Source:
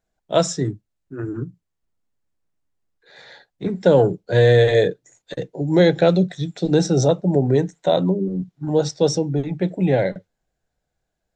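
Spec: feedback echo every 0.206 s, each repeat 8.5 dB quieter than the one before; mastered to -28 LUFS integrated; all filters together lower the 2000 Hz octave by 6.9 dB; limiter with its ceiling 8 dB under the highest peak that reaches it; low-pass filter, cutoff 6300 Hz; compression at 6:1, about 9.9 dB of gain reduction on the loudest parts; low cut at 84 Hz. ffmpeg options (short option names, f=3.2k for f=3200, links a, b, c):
-af "highpass=84,lowpass=6.3k,equalizer=f=2k:t=o:g=-8.5,acompressor=threshold=-21dB:ratio=6,alimiter=limit=-19.5dB:level=0:latency=1,aecho=1:1:206|412|618|824:0.376|0.143|0.0543|0.0206,volume=1.5dB"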